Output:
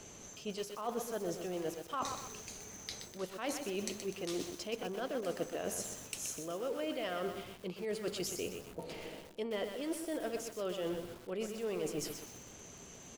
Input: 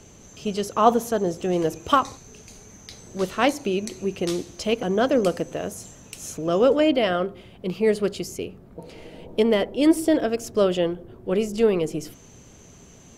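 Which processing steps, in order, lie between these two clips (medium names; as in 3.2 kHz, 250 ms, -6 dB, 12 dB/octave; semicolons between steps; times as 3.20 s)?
bass shelf 280 Hz -9 dB; reverse; compression 16:1, threshold -34 dBFS, peak gain reduction 23 dB; reverse; delay 139 ms -23 dB; bit-crushed delay 125 ms, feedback 55%, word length 8-bit, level -6 dB; trim -1 dB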